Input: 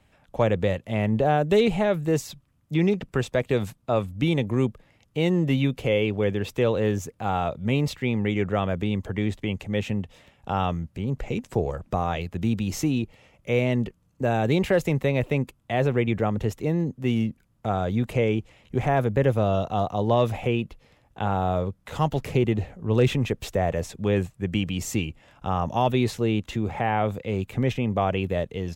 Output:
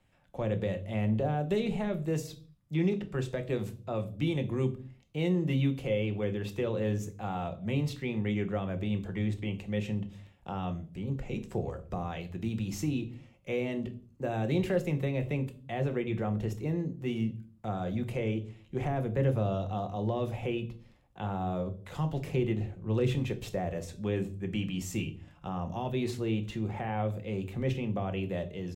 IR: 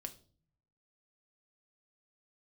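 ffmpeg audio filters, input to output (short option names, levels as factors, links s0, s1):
-filter_complex "[0:a]atempo=1,acrossover=split=430[s0][s1];[s1]alimiter=limit=0.1:level=0:latency=1:release=175[s2];[s0][s2]amix=inputs=2:normalize=0[s3];[1:a]atrim=start_sample=2205,afade=t=out:st=0.42:d=0.01,atrim=end_sample=18963[s4];[s3][s4]afir=irnorm=-1:irlink=0,volume=0.596"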